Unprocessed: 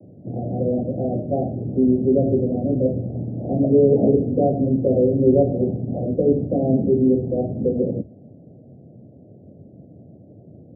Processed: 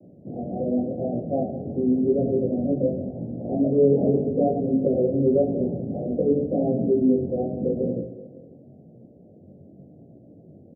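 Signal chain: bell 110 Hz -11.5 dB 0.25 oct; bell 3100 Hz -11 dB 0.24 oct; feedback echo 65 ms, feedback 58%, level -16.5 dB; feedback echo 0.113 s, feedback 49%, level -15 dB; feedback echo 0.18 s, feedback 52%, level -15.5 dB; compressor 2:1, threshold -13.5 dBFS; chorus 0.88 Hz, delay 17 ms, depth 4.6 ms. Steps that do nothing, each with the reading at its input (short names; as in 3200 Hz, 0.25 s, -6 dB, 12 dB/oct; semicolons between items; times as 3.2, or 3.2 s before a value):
bell 3100 Hz: input band ends at 760 Hz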